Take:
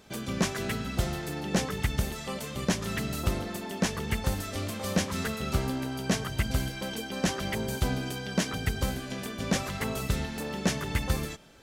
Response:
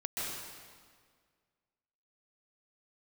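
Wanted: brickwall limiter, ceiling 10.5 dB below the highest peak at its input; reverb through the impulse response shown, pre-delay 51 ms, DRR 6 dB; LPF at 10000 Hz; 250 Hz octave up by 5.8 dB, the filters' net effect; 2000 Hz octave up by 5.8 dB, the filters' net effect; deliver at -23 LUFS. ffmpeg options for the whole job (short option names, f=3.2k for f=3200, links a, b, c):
-filter_complex "[0:a]lowpass=10k,equalizer=f=250:t=o:g=7.5,equalizer=f=2k:t=o:g=7,alimiter=limit=-20dB:level=0:latency=1,asplit=2[a][b];[1:a]atrim=start_sample=2205,adelay=51[c];[b][c]afir=irnorm=-1:irlink=0,volume=-10dB[d];[a][d]amix=inputs=2:normalize=0,volume=6.5dB"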